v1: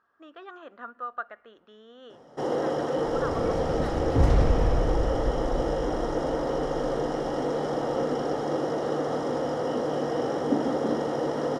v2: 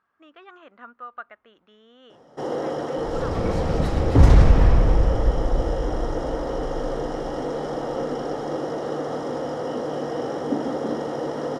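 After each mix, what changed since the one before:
speech: send off; second sound +8.5 dB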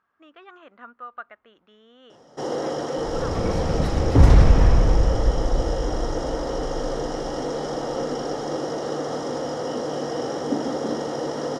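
first sound: add bell 5900 Hz +9 dB 1.3 oct

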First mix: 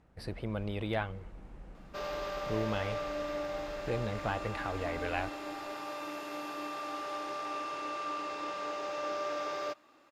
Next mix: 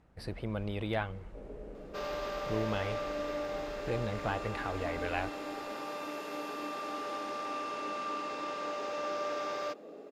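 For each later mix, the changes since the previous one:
first sound: unmuted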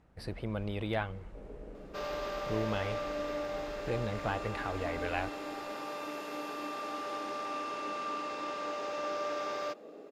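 first sound -4.0 dB; reverb: on, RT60 1.9 s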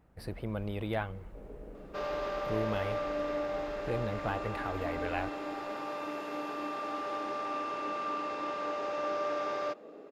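speech: remove air absorption 77 m; second sound +3.0 dB; master: add high shelf 3600 Hz -10.5 dB

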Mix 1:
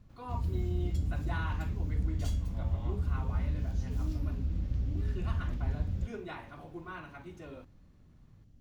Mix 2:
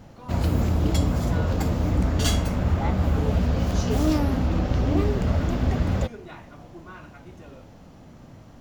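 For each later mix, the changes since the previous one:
background: remove passive tone stack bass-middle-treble 10-0-1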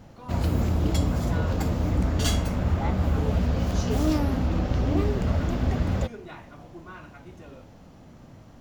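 background: send off

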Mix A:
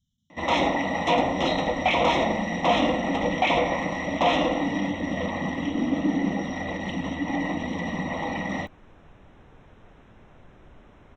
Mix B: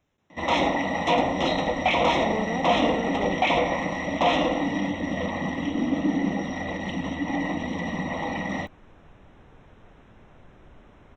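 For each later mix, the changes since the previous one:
speech: remove brick-wall FIR band-stop 260–2900 Hz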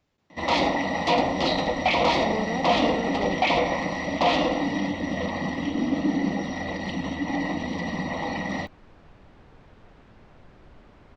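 master: remove Butterworth band-stop 4600 Hz, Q 3.1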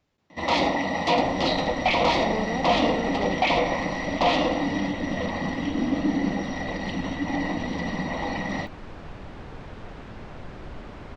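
second sound +12.0 dB

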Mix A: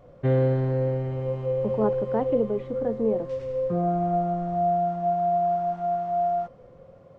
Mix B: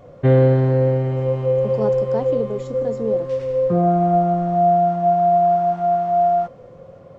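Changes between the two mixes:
speech: remove LPF 2700 Hz 24 dB/oct; background +8.0 dB

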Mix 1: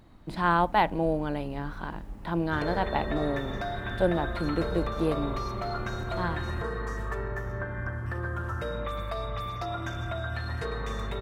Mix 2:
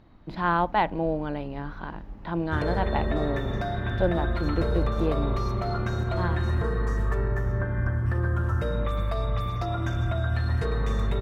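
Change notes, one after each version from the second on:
speech: add running mean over 5 samples; background: add low shelf 360 Hz +9.5 dB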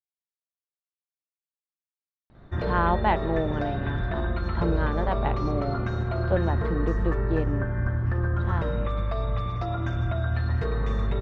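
speech: entry +2.30 s; master: add air absorption 130 m

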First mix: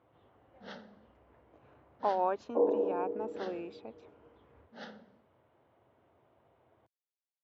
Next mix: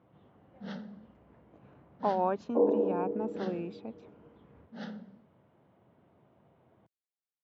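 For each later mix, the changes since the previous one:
master: add bell 180 Hz +14.5 dB 0.98 oct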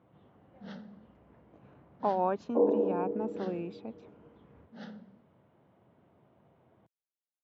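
first sound -4.0 dB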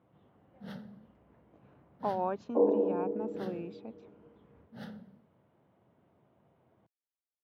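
speech -3.5 dB; first sound: remove brick-wall FIR band-pass 160–6600 Hz

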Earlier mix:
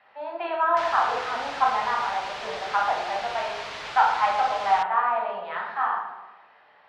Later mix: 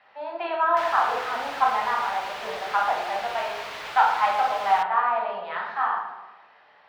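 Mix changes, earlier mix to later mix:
background: add tone controls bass -4 dB, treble -9 dB; master: remove air absorption 98 m

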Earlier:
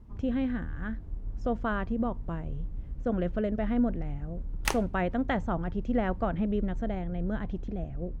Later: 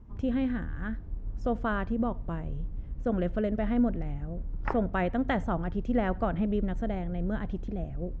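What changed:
background: add LPF 1600 Hz 24 dB/oct; reverb: on, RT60 0.35 s

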